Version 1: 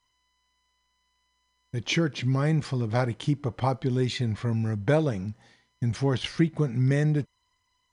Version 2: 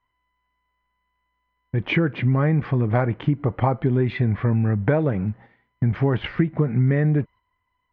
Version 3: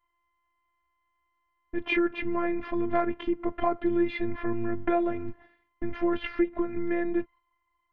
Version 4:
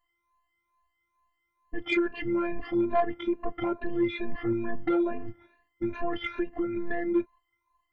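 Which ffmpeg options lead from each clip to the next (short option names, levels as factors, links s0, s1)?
-af "lowpass=f=2300:w=0.5412,lowpass=f=2300:w=1.3066,agate=range=0.447:threshold=0.00355:ratio=16:detection=peak,acompressor=threshold=0.0631:ratio=6,volume=2.66"
-af "afftfilt=real='hypot(re,im)*cos(PI*b)':imag='0':win_size=512:overlap=0.75"
-af "afftfilt=real='re*pow(10,20/40*sin(2*PI*(1.5*log(max(b,1)*sr/1024/100)/log(2)-(2.3)*(pts-256)/sr)))':imag='im*pow(10,20/40*sin(2*PI*(1.5*log(max(b,1)*sr/1024/100)/log(2)-(2.3)*(pts-256)/sr)))':win_size=1024:overlap=0.75,asoftclip=type=tanh:threshold=0.251,volume=0.668"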